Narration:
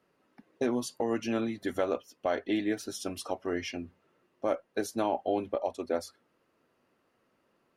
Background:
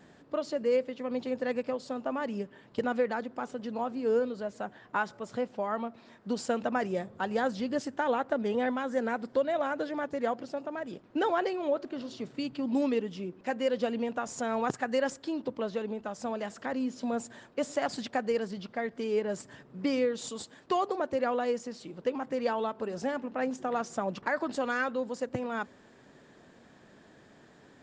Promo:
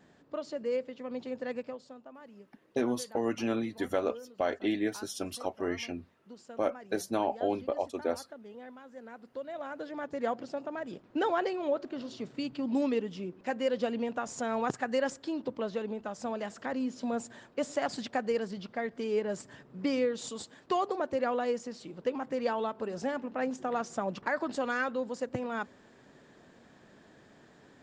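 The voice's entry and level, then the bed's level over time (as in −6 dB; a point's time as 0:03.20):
2.15 s, −0.5 dB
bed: 0:01.59 −5 dB
0:02.11 −18 dB
0:08.95 −18 dB
0:10.29 −1 dB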